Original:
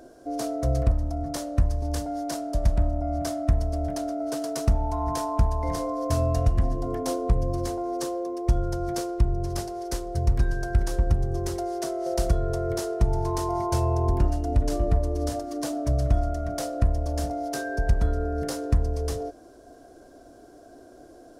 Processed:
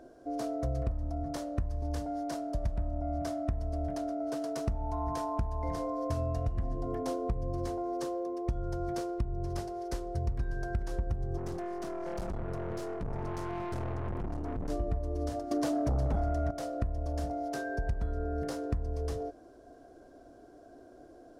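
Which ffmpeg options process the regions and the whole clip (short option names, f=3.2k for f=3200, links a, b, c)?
-filter_complex "[0:a]asettb=1/sr,asplit=3[a][b][c];[a]atrim=end=11.374[d];[b]atrim=start=11.37:end=14.7,asetpts=PTS-STARTPTS,afade=t=in:d=0.004:c=qsin,afade=t=out:st=3.326:d=0.004:c=qsin,equalizer=f=190:w=1.5:g=12.5,aeval=exprs='(tanh(28.2*val(0)+0.6)-tanh(0.6))/28.2':c=same[e];[c]atrim=start=14.696[f];[d][e]acrossfade=d=0.004:c1=hsin:c2=qsin[g];[g][f]acrossfade=d=0.004:c1=qsin:c2=hsin,asettb=1/sr,asplit=3[h][i][j];[h]atrim=end=15.514[k];[i]atrim=start=15.51:end=16.51,asetpts=PTS-STARTPTS,afade=t=in:d=0.004:c=qsin,afade=t=out:st=0.996:d=0.004:c=qsin,highpass=f=43:w=0.5412,highpass=f=43:w=1.3066,aeval=exprs='0.266*sin(PI/2*2.24*val(0)/0.266)':c=same[l];[j]atrim=start=16.506[m];[k][l]acrossfade=d=0.004:c1=hsin:c2=qsin[n];[n][m]acrossfade=d=0.004:c1=qsin:c2=hsin,highshelf=f=4.4k:g=-10,acompressor=threshold=-24dB:ratio=4,volume=-4.5dB"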